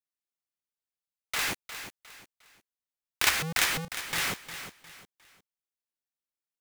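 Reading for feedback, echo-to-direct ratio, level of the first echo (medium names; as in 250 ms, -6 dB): 32%, -10.5 dB, -11.0 dB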